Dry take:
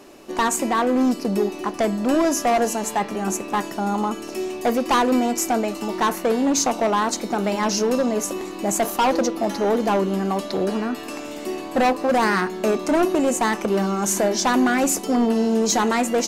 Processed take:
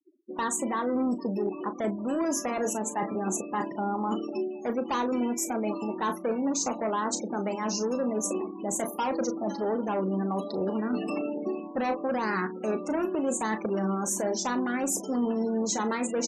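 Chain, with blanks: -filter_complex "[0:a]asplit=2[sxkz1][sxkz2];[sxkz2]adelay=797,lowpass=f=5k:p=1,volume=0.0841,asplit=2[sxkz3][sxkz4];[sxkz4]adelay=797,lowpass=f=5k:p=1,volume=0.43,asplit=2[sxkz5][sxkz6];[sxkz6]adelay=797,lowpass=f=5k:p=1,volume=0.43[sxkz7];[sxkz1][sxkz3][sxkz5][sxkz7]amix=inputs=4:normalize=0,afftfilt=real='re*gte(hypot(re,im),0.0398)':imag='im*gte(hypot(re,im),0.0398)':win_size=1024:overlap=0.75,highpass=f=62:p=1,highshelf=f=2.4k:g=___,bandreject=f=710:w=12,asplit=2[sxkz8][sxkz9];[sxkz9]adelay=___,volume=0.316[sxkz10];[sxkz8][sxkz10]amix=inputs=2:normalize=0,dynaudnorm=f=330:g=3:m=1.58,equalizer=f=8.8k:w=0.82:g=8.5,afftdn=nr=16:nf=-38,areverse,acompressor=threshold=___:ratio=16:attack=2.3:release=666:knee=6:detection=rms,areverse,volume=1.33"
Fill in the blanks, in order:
-6.5, 37, 0.0562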